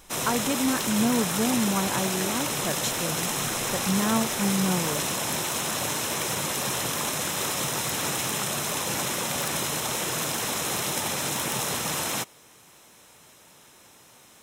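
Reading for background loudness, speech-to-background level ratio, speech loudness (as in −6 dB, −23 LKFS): −26.5 LKFS, −2.0 dB, −28.5 LKFS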